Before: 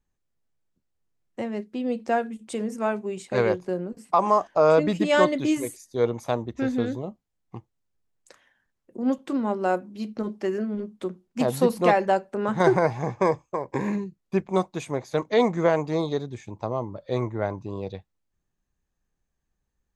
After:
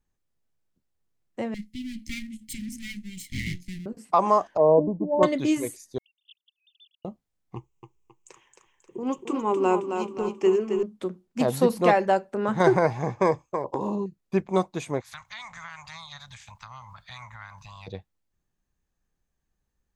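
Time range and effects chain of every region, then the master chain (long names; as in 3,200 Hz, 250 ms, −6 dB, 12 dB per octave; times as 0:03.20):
0:01.54–0:03.86: lower of the sound and its delayed copy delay 0.96 ms + Chebyshev band-stop filter 290–2,000 Hz, order 4 + high-shelf EQ 4,800 Hz +7 dB
0:04.57–0:05.23: linear-phase brick-wall low-pass 1,100 Hz + multiband upward and downward expander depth 100%
0:05.98–0:07.05: three sine waves on the formant tracks + Chebyshev high-pass filter 2,800 Hz, order 8
0:07.56–0:10.83: EQ curve with evenly spaced ripples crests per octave 0.72, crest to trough 14 dB + feedback echo with a high-pass in the loop 268 ms, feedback 48%, high-pass 240 Hz, level −6 dB
0:13.64–0:14.06: Chebyshev band-stop filter 1,200–2,700 Hz, order 5 + parametric band 700 Hz +13.5 dB 2.3 octaves + downward compressor, threshold −24 dBFS
0:15.00–0:17.86: ceiling on every frequency bin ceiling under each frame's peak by 20 dB + Chebyshev band-stop filter 110–1,200 Hz + downward compressor 3 to 1, threshold −42 dBFS
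whole clip: no processing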